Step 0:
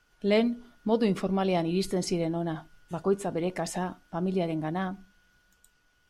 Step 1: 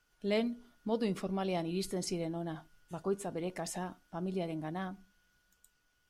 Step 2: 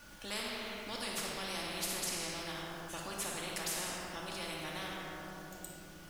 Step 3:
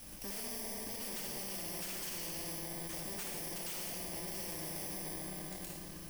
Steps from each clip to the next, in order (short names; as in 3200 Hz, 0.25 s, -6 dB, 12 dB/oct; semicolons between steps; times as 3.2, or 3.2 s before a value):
high shelf 6000 Hz +7 dB; gain -8 dB
added noise pink -75 dBFS; shoebox room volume 1800 m³, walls mixed, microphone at 2.4 m; spectral compressor 4:1; gain -8 dB
FFT order left unsorted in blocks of 32 samples; compressor, threshold -41 dBFS, peak gain reduction 8.5 dB; wavefolder -40 dBFS; gain +4.5 dB